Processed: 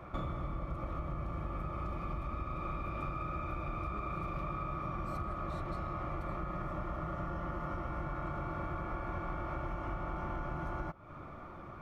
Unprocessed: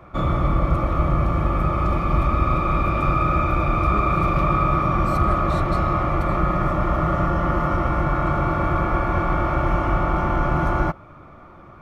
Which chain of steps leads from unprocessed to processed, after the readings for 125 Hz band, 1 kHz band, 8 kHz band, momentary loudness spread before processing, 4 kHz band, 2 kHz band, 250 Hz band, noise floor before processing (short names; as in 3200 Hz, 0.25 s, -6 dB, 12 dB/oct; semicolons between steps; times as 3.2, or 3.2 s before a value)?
-18.5 dB, -18.0 dB, n/a, 2 LU, -18.0 dB, -18.0 dB, -18.0 dB, -44 dBFS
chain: compressor 16:1, threshold -31 dBFS, peak gain reduction 18 dB; gain -3.5 dB